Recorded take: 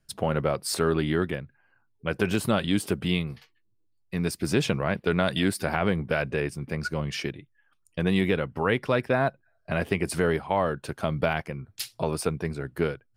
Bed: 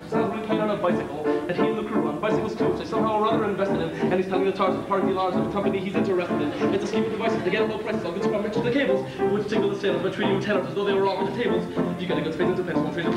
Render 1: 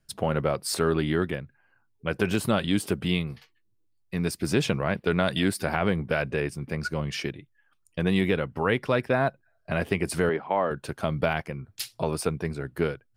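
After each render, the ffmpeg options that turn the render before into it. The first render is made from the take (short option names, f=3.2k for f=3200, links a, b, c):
-filter_complex "[0:a]asettb=1/sr,asplit=3[a][b][c];[a]atrim=end=10.294[d];[b]atrim=start=10.29:end=10.71,asetpts=PTS-STARTPTS,afade=t=in:d=0.004:c=qsin,afade=t=out:st=0.416:d=0.004:c=qsin,highpass=220,lowpass=2.5k[e];[c]atrim=start=10.706[f];[d][e]acrossfade=d=0.004:c1=hsin:c2=qsin[g];[g][f]acrossfade=d=0.004:c1=qsin:c2=hsin"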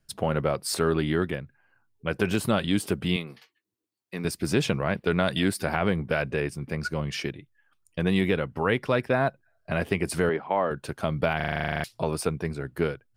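-filter_complex "[0:a]asettb=1/sr,asplit=3[a][b][c];[a]atrim=end=3.164[d];[b]atrim=start=3.16:end=4.25,asetpts=PTS-STARTPTS,afade=t=in:d=0.004:c=qsin,afade=t=out:st=1.086:d=0.004:c=qsin,highpass=250[e];[c]atrim=start=4.246[f];[d][e]acrossfade=d=0.004:c1=hsin:c2=qsin[g];[g][f]acrossfade=d=0.004:c1=qsin:c2=hsin,asplit=13[h][i][j][k][l][m][n][o][p][q][r][s][t];[h]atrim=end=11.402[u];[i]atrim=start=11.358:end=11.402[v];[j]atrim=start=11.358:end=11.402[w];[k]atrim=start=11.358:end=11.402[x];[l]atrim=start=11.358:end=11.402[y];[m]atrim=start=11.358:end=11.402[z];[n]atrim=start=11.358:end=11.402[aa];[o]atrim=start=11.358:end=11.402[ab];[p]atrim=start=11.358:end=11.402[ac];[q]atrim=start=11.358:end=11.402[ad];[r]atrim=start=11.358:end=11.402[ae];[s]atrim=start=11.358:end=11.402[af];[t]atrim=start=11.838[ag];[u][v]acrossfade=d=0.004:c1=hsin:c2=hsin[ah];[ah][w]acrossfade=d=0.004:c1=hsin:c2=hsin[ai];[ai][x]acrossfade=d=0.004:c1=hsin:c2=hsin[aj];[aj][y]acrossfade=d=0.004:c1=hsin:c2=hsin[ak];[ak][z]acrossfade=d=0.004:c1=hsin:c2=hsin[al];[al][aa]acrossfade=d=0.004:c1=hsin:c2=hsin[am];[am][ab]acrossfade=d=0.004:c1=hsin:c2=hsin[an];[an][ac]acrossfade=d=0.004:c1=hsin:c2=hsin[ao];[ao][ad]acrossfade=d=0.004:c1=hsin:c2=hsin[ap];[ap][ae]acrossfade=d=0.004:c1=hsin:c2=hsin[aq];[aq][af]acrossfade=d=0.004:c1=hsin:c2=hsin[ar];[ar][ag]acrossfade=d=0.004:c1=hsin:c2=hsin"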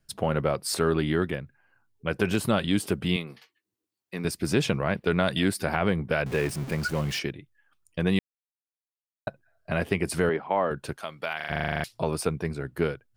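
-filter_complex "[0:a]asettb=1/sr,asplit=3[a][b][c];[a]atrim=end=6.264[d];[b]atrim=start=6.26:end=7.19,asetpts=PTS-STARTPTS,afade=t=in:d=0.004:c=qsin,afade=t=out:st=0.926:d=0.004:c=qsin,aeval=exprs='val(0)+0.5*0.0211*sgn(val(0))':c=same[e];[c]atrim=start=7.186[f];[d][e]acrossfade=d=0.004:c1=hsin:c2=qsin[g];[g][f]acrossfade=d=0.004:c1=qsin:c2=hsin,asplit=3[h][i][j];[h]afade=t=out:st=10.96:d=0.02[k];[i]highpass=f=1.5k:p=1,afade=t=in:st=10.96:d=0.02,afade=t=out:st=11.49:d=0.02[l];[j]afade=t=in:st=11.49:d=0.02[m];[k][l][m]amix=inputs=3:normalize=0,asplit=3[n][o][p];[n]atrim=end=8.19,asetpts=PTS-STARTPTS,afade=t=out:st=8.186:d=0.004:c=hsin[q];[o]atrim=start=8.19:end=9.27,asetpts=PTS-STARTPTS,volume=0[r];[p]atrim=start=9.27,asetpts=PTS-STARTPTS,afade=t=in:d=0.004:c=hsin[s];[q][r][s]concat=n=3:v=0:a=1"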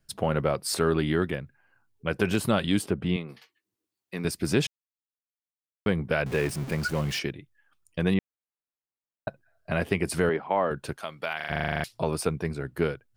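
-filter_complex "[0:a]asettb=1/sr,asplit=3[a][b][c];[a]atrim=end=2.864[d];[b]atrim=start=2.86:end=3.29,asetpts=PTS-STARTPTS,afade=t=in:d=0.004:c=qsin,afade=t=out:st=0.426:d=0.004:c=qsin,lowpass=f=1.5k:p=1[e];[c]atrim=start=3.286[f];[d][e]acrossfade=d=0.004:c1=hsin:c2=qsin[g];[g][f]acrossfade=d=0.004:c1=qsin:c2=hsin,asettb=1/sr,asplit=3[h][i][j];[h]atrim=end=8.144[k];[i]atrim=start=8.14:end=9.28,asetpts=PTS-STARTPTS,afade=t=in:d=0.004:c=qsin,afade=t=out:st=1.136:d=0.004:c=qsin,lowpass=1.9k[l];[j]atrim=start=9.276[m];[k][l]acrossfade=d=0.004:c1=hsin:c2=qsin[n];[n][m]acrossfade=d=0.004:c1=qsin:c2=hsin,asplit=3[o][p][q];[o]atrim=end=4.67,asetpts=PTS-STARTPTS,afade=t=out:st=4.666:d=0.004:c=hsin[r];[p]atrim=start=4.67:end=5.86,asetpts=PTS-STARTPTS,volume=0[s];[q]atrim=start=5.86,asetpts=PTS-STARTPTS,afade=t=in:d=0.004:c=hsin[t];[r][s][t]concat=n=3:v=0:a=1"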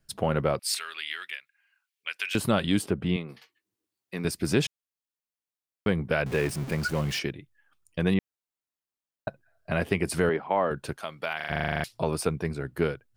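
-filter_complex "[0:a]asettb=1/sr,asplit=3[a][b][c];[a]atrim=end=0.594[d];[b]atrim=start=0.59:end=2.35,asetpts=PTS-STARTPTS,afade=t=in:d=0.004:c=qsin,afade=t=out:st=1.756:d=0.004:c=qsin,highpass=f=2.4k:t=q:w=1.8[e];[c]atrim=start=2.346[f];[d][e]acrossfade=d=0.004:c1=hsin:c2=qsin[g];[g][f]acrossfade=d=0.004:c1=qsin:c2=hsin"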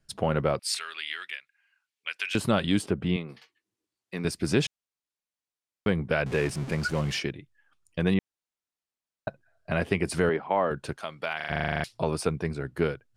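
-af "lowpass=9.4k"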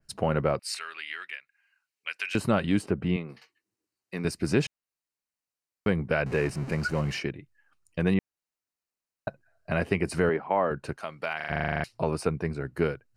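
-af "bandreject=f=3.4k:w=5.5,adynamicequalizer=threshold=0.00447:dfrequency=3300:dqfactor=0.7:tfrequency=3300:tqfactor=0.7:attack=5:release=100:ratio=0.375:range=3.5:mode=cutabove:tftype=highshelf"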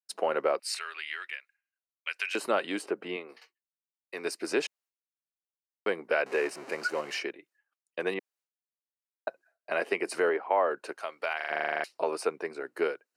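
-af "agate=range=-33dB:threshold=-54dB:ratio=3:detection=peak,highpass=f=360:w=0.5412,highpass=f=360:w=1.3066"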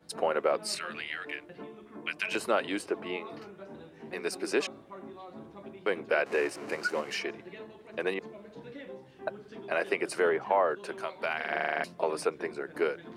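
-filter_complex "[1:a]volume=-22.5dB[a];[0:a][a]amix=inputs=2:normalize=0"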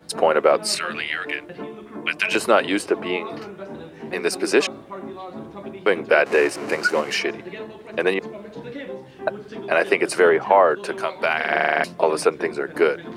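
-af "volume=11dB"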